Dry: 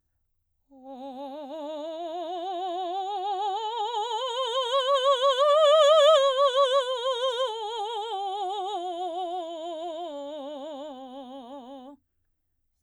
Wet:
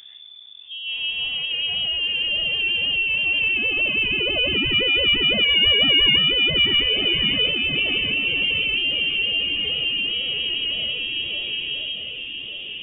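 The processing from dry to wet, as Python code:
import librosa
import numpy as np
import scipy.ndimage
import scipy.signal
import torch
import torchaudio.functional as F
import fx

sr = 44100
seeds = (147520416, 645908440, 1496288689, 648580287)

p1 = fx.wow_flutter(x, sr, seeds[0], rate_hz=2.1, depth_cents=75.0)
p2 = 10.0 ** (-23.5 / 20.0) * np.tanh(p1 / 10.0 ** (-23.5 / 20.0))
p3 = p1 + F.gain(torch.from_numpy(p2), -7.0).numpy()
p4 = fx.doubler(p3, sr, ms=14.0, db=-8)
p5 = p4 + fx.echo_feedback(p4, sr, ms=1177, feedback_pct=45, wet_db=-14, dry=0)
p6 = fx.freq_invert(p5, sr, carrier_hz=3500)
p7 = fx.env_flatten(p6, sr, amount_pct=50)
y = F.gain(torch.from_numpy(p7), -2.0).numpy()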